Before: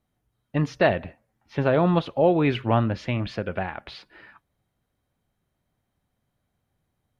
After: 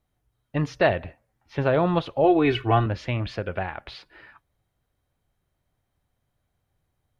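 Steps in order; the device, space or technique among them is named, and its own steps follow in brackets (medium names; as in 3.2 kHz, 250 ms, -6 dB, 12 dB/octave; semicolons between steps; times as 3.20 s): 2.24–2.86 s: comb 2.7 ms, depth 79%; low shelf boost with a cut just above (bass shelf 72 Hz +6 dB; peaking EQ 210 Hz -6 dB 0.79 oct)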